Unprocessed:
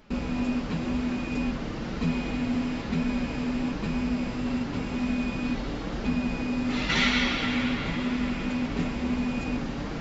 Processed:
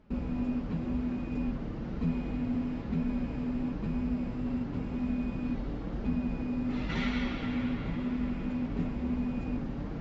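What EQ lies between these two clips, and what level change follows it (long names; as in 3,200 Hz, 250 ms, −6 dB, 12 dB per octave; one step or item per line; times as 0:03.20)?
high-pass filter 85 Hz 6 dB per octave
spectral tilt −4 dB per octave
low-shelf EQ 480 Hz −4 dB
−8.5 dB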